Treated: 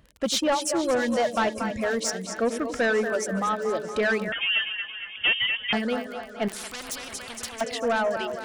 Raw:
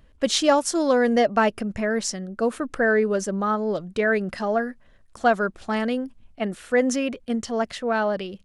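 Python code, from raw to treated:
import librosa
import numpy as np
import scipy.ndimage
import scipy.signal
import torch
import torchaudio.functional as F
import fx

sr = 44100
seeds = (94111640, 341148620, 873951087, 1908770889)

p1 = fx.dereverb_blind(x, sr, rt60_s=1.1)
p2 = scipy.signal.sosfilt(scipy.signal.butter(2, 49.0, 'highpass', fs=sr, output='sos'), p1)
p3 = fx.dereverb_blind(p2, sr, rt60_s=1.5)
p4 = fx.rider(p3, sr, range_db=10, speed_s=2.0)
p5 = p3 + (p4 * librosa.db_to_amplitude(0.0))
p6 = fx.echo_split(p5, sr, split_hz=470.0, low_ms=95, high_ms=232, feedback_pct=52, wet_db=-10.0)
p7 = fx.dmg_crackle(p6, sr, seeds[0], per_s=40.0, level_db=-29.0)
p8 = 10.0 ** (-13.0 / 20.0) * np.tanh(p7 / 10.0 ** (-13.0 / 20.0))
p9 = fx.echo_swing(p8, sr, ms=898, ratio=3, feedback_pct=57, wet_db=-19)
p10 = fx.freq_invert(p9, sr, carrier_hz=3400, at=(4.32, 5.73))
p11 = fx.spectral_comp(p10, sr, ratio=4.0, at=(6.48, 7.61))
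y = p11 * librosa.db_to_amplitude(-5.0)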